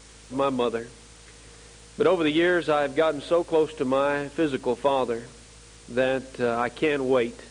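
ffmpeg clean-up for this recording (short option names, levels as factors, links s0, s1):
-af "adeclick=t=4,bandreject=f=54.3:t=h:w=4,bandreject=f=108.6:t=h:w=4,bandreject=f=162.9:t=h:w=4,bandreject=f=217.2:t=h:w=4,bandreject=f=271.5:t=h:w=4,afftdn=nr=21:nf=-49"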